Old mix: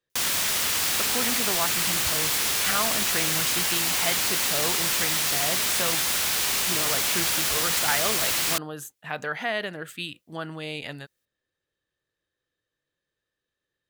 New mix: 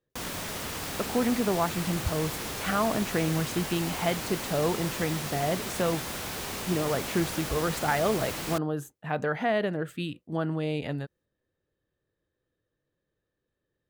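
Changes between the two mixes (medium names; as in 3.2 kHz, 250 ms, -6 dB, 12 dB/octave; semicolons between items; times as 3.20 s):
background -5.5 dB; master: add tilt shelf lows +8.5 dB, about 1.1 kHz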